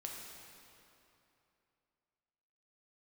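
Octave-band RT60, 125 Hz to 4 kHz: 2.9, 2.9, 2.9, 2.9, 2.6, 2.2 s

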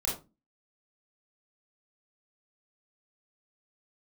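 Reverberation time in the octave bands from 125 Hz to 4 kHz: 0.40, 0.45, 0.30, 0.25, 0.20, 0.20 s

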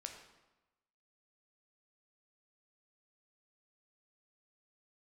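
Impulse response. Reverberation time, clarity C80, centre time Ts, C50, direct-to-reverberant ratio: 1.1 s, 8.0 dB, 28 ms, 6.0 dB, 3.0 dB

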